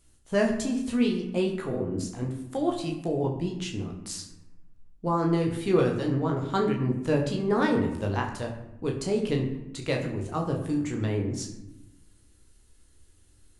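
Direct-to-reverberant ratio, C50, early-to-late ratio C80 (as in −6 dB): 0.5 dB, 7.5 dB, 9.5 dB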